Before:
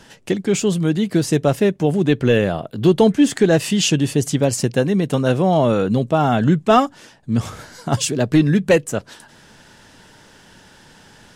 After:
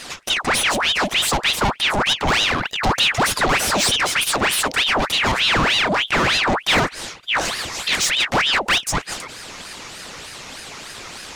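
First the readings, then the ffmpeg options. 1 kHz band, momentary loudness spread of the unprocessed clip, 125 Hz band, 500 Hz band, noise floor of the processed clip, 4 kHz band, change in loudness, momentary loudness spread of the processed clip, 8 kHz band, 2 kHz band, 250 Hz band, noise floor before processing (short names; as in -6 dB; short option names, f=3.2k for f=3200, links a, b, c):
+3.0 dB, 8 LU, -10.5 dB, -8.5 dB, -39 dBFS, +11.0 dB, 0.0 dB, 17 LU, +4.0 dB, +10.5 dB, -11.5 dB, -48 dBFS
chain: -filter_complex "[0:a]asplit=2[a][b];[b]highpass=f=720:p=1,volume=28dB,asoftclip=type=tanh:threshold=-4dB[c];[a][c]amix=inputs=2:normalize=0,lowpass=f=5.8k:p=1,volume=-6dB,equalizer=f=6k:t=o:w=0.22:g=6.5,aeval=exprs='val(0)*sin(2*PI*1900*n/s+1900*0.8/3.3*sin(2*PI*3.3*n/s))':c=same,volume=-4.5dB"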